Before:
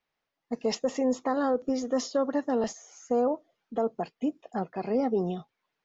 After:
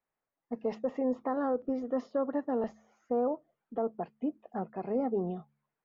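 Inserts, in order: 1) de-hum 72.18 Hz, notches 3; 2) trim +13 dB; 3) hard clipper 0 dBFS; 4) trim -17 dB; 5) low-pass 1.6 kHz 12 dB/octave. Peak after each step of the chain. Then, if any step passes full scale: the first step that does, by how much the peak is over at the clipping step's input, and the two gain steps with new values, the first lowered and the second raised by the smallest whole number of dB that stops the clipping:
-16.5 dBFS, -3.5 dBFS, -3.5 dBFS, -20.5 dBFS, -20.5 dBFS; nothing clips

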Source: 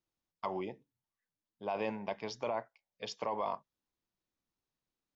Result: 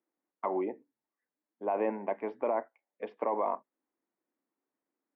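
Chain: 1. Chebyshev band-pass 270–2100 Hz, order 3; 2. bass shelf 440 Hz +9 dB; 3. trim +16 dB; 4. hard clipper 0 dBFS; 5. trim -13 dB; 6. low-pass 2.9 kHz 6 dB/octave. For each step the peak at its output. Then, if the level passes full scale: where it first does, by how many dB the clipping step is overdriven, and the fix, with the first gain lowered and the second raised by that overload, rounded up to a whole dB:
-23.0 dBFS, -21.0 dBFS, -5.0 dBFS, -5.0 dBFS, -18.0 dBFS, -18.5 dBFS; nothing clips

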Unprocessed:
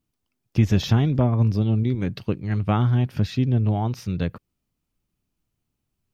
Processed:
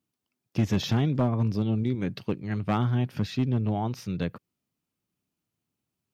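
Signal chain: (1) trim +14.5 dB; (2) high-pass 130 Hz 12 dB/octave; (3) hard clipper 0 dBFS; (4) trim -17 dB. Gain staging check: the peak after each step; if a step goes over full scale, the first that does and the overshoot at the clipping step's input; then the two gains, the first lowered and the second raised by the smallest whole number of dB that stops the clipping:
+6.5 dBFS, +6.0 dBFS, 0.0 dBFS, -17.0 dBFS; step 1, 6.0 dB; step 1 +8.5 dB, step 4 -11 dB

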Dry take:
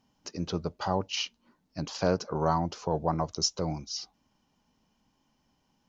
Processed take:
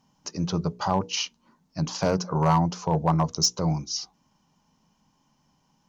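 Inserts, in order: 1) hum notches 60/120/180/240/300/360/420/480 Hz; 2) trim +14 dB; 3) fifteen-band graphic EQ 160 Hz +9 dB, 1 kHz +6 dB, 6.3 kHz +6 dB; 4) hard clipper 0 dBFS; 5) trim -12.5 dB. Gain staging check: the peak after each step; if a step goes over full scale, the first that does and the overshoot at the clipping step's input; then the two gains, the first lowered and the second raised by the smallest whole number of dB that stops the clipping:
-12.0 dBFS, +2.0 dBFS, +5.5 dBFS, 0.0 dBFS, -12.5 dBFS; step 2, 5.5 dB; step 2 +8 dB, step 5 -6.5 dB

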